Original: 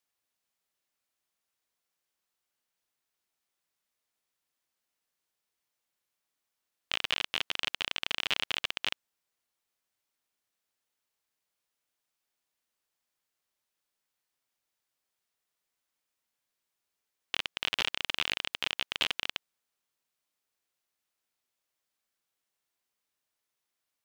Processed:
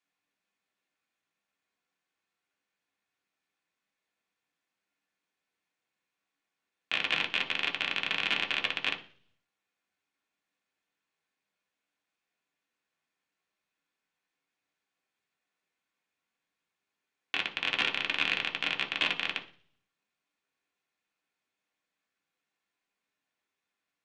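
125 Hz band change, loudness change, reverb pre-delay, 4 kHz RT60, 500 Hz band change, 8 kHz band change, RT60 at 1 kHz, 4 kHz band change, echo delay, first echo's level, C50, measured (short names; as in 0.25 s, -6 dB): +2.0 dB, +2.0 dB, 3 ms, 0.55 s, +2.5 dB, -6.0 dB, 0.40 s, 0.0 dB, none, none, 13.5 dB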